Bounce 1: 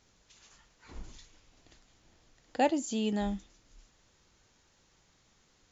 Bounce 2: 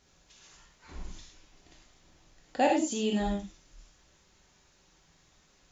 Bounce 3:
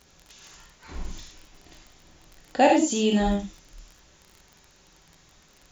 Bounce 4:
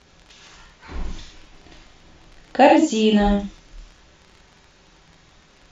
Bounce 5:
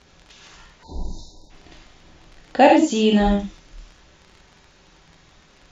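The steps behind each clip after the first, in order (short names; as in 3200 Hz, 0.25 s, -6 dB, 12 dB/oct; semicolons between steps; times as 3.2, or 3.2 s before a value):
non-linear reverb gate 0.13 s flat, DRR -0.5 dB
crackle 32/s -44 dBFS; gain +7 dB
LPF 4500 Hz 12 dB/oct; gain +5.5 dB
spectral delete 0.83–1.5, 1000–3600 Hz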